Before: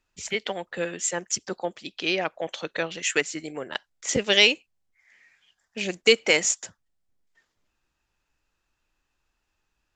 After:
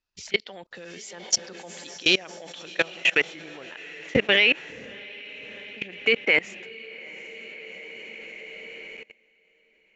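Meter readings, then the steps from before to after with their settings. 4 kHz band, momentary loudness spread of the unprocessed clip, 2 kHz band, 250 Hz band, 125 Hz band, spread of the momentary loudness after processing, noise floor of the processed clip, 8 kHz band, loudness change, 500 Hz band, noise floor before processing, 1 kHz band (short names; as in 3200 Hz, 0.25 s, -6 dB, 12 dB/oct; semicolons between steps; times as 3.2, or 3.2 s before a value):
-1.0 dB, 15 LU, +3.0 dB, -1.0 dB, -0.5 dB, 19 LU, -64 dBFS, -5.5 dB, +2.0 dB, -2.5 dB, -78 dBFS, -4.5 dB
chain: low-pass sweep 5000 Hz -> 2300 Hz, 1.38–3.47; diffused feedback echo 0.733 s, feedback 48%, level -9.5 dB; level quantiser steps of 23 dB; gain +5 dB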